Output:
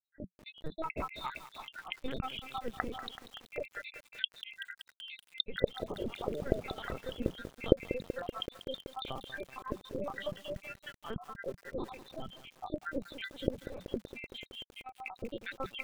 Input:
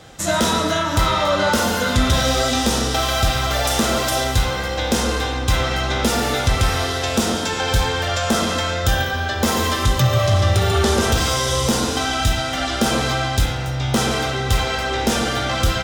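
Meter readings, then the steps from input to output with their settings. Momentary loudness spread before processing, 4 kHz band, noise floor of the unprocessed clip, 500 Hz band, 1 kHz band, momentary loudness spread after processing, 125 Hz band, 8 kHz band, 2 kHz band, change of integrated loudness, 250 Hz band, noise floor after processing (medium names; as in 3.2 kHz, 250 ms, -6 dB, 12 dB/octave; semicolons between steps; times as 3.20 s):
4 LU, -21.5 dB, -24 dBFS, -16.5 dB, -22.5 dB, 11 LU, -26.0 dB, -38.0 dB, -21.5 dB, -21.0 dB, -18.5 dB, -75 dBFS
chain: random holes in the spectrogram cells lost 85%; steep high-pass 180 Hz 96 dB/octave; treble shelf 2.4 kHz -6.5 dB; compression 10:1, threshold -28 dBFS, peak gain reduction 13 dB; rotary cabinet horn 0.75 Hz; distance through air 140 m; careless resampling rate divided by 4×, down filtered, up zero stuff; LPC vocoder at 8 kHz pitch kept; bit-crushed delay 190 ms, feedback 80%, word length 7-bit, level -12 dB; trim -3.5 dB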